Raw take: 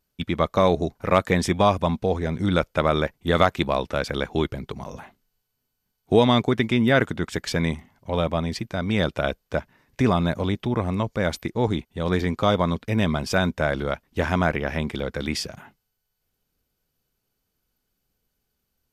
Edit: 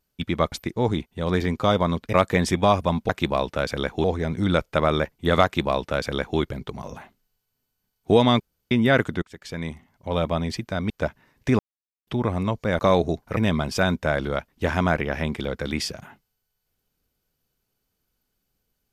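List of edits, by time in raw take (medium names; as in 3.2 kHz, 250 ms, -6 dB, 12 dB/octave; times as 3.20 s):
0.52–1.10 s: swap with 11.31–12.92 s
3.46–4.41 s: copy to 2.06 s
6.42–6.73 s: room tone
7.24–8.27 s: fade in, from -23 dB
8.92–9.42 s: delete
10.11–10.59 s: mute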